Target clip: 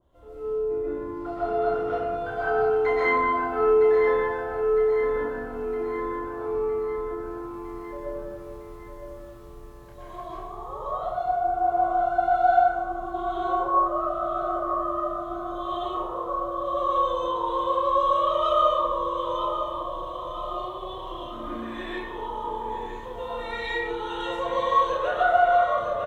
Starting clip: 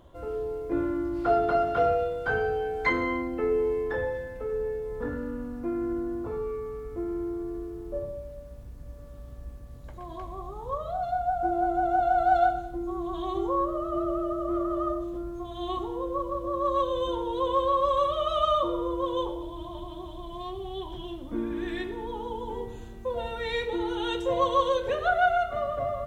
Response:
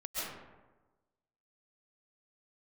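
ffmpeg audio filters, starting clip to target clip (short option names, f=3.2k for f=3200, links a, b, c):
-filter_complex "[0:a]asplit=2[a][b];[b]adelay=30,volume=-5.5dB[c];[a][c]amix=inputs=2:normalize=0,aecho=1:1:958|1916|2874|3832|4790|5748:0.335|0.181|0.0977|0.0527|0.0285|0.0154[d];[1:a]atrim=start_sample=2205[e];[d][e]afir=irnorm=-1:irlink=0,acrossover=split=640[f][g];[g]dynaudnorm=f=140:g=31:m=9.5dB[h];[f][h]amix=inputs=2:normalize=0,adynamicequalizer=threshold=0.02:dfrequency=1900:dqfactor=0.7:tfrequency=1900:tqfactor=0.7:attack=5:release=100:ratio=0.375:range=2.5:mode=cutabove:tftype=highshelf,volume=-7.5dB"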